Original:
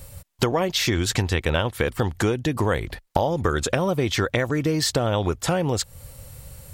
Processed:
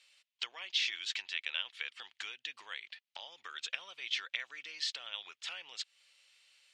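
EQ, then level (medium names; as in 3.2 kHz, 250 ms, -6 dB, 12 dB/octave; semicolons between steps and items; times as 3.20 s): ladder band-pass 3.4 kHz, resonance 40%; distance through air 77 m; +3.5 dB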